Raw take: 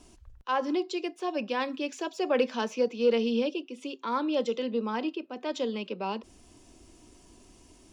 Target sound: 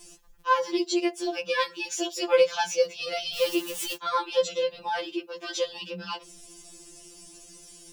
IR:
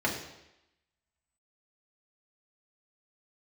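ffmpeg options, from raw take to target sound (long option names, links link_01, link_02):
-filter_complex "[0:a]asettb=1/sr,asplit=3[link_01][link_02][link_03];[link_01]atrim=end=3.344[link_04];[link_02]atrim=start=3.34:end=3.96,asetpts=PTS-STARTPTS,afade=type=in:duration=0.004:curve=qsin,afade=type=out:start_time=0.616:duration=0.004:curve=qsin,aeval=exprs='val(0)+0.5*0.0112*sgn(val(0))':channel_layout=same[link_05];[link_03]atrim=start=3.956[link_06];[link_04][link_05]acrossfade=duration=0.004:curve1=hsin:curve2=qsin[link_07];[link_07][link_06]acrossfade=duration=0.004:curve1=qsin:curve2=hsin,crystalizer=i=3:c=0,afftfilt=real='re*2.83*eq(mod(b,8),0)':imag='im*2.83*eq(mod(b,8),0)':win_size=2048:overlap=0.75,volume=4dB"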